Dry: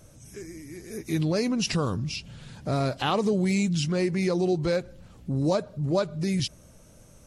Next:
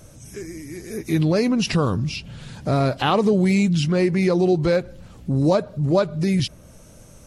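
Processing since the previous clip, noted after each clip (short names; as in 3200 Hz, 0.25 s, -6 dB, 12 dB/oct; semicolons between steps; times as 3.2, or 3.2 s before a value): dynamic EQ 7100 Hz, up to -7 dB, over -50 dBFS, Q 0.81; gain +6.5 dB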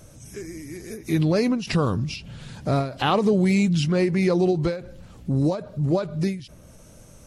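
ending taper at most 120 dB/s; gain -1.5 dB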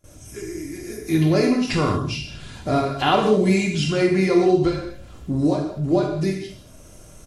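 gate with hold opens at -39 dBFS; comb 2.9 ms, depth 45%; non-linear reverb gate 0.26 s falling, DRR -0.5 dB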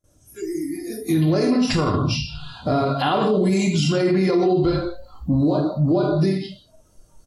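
spectral noise reduction 19 dB; bell 2300 Hz -7.5 dB 0.65 oct; limiter -17.5 dBFS, peak gain reduction 10.5 dB; gain +6 dB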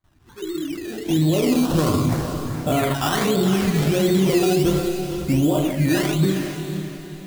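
decimation with a swept rate 16×, swing 60% 1.4 Hz; LFO notch saw up 0.34 Hz 470–5800 Hz; diffused feedback echo 0.455 s, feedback 41%, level -8 dB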